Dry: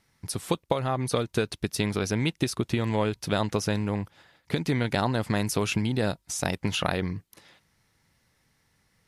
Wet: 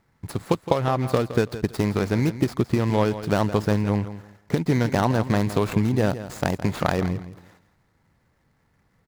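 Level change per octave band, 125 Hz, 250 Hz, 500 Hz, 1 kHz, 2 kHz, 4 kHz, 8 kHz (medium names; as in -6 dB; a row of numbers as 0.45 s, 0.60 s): +5.5 dB, +5.0 dB, +5.0 dB, +4.5 dB, +1.0 dB, -3.5 dB, -6.0 dB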